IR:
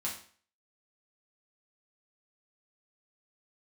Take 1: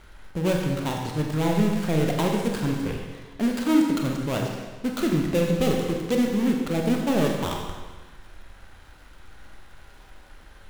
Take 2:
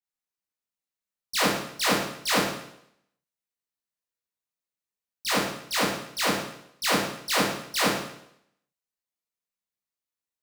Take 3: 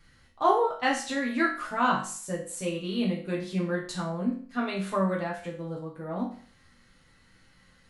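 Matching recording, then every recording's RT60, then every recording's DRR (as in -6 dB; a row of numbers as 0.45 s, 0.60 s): 3; 1.3 s, 0.75 s, 0.45 s; 0.5 dB, -9.5 dB, -4.5 dB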